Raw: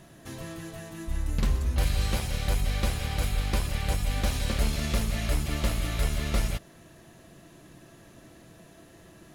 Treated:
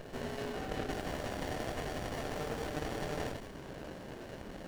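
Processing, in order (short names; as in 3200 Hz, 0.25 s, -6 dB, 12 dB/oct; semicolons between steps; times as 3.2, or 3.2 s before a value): HPF 110 Hz 12 dB/oct; high shelf 7000 Hz -12 dB; notch 690 Hz, Q 12; reverse; compressor 10:1, threshold -41 dBFS, peak gain reduction 15 dB; reverse; small resonant body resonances 1000/2400 Hz, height 16 dB; ring modulator 450 Hz; echo with dull and thin repeats by turns 0.162 s, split 1200 Hz, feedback 52%, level -2 dB; Schroeder reverb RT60 0.34 s, combs from 30 ms, DRR 1.5 dB; speed mistake 7.5 ips tape played at 15 ips; running maximum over 33 samples; gain +7.5 dB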